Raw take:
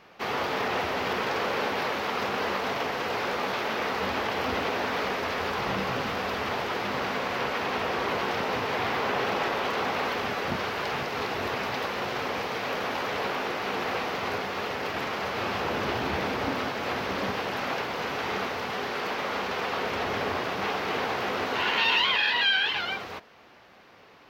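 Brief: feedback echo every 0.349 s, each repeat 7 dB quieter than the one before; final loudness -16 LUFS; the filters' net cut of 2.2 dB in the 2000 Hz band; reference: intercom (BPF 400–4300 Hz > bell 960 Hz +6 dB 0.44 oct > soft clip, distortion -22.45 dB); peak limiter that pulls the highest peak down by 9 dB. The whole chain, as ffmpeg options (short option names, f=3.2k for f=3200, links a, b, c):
-af "equalizer=f=2k:t=o:g=-3,alimiter=limit=-23dB:level=0:latency=1,highpass=400,lowpass=4.3k,equalizer=f=960:t=o:w=0.44:g=6,aecho=1:1:349|698|1047|1396|1745:0.447|0.201|0.0905|0.0407|0.0183,asoftclip=threshold=-21.5dB,volume=15dB"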